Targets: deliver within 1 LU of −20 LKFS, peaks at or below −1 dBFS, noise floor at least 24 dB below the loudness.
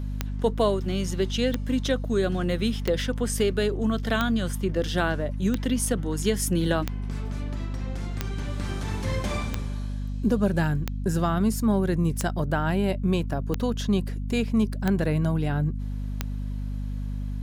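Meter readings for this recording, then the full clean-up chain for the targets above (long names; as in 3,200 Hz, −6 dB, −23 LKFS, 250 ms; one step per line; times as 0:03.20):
number of clicks 13; mains hum 50 Hz; hum harmonics up to 250 Hz; level of the hum −28 dBFS; integrated loudness −26.5 LKFS; sample peak −8.5 dBFS; target loudness −20.0 LKFS
→ click removal
hum removal 50 Hz, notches 5
level +6.5 dB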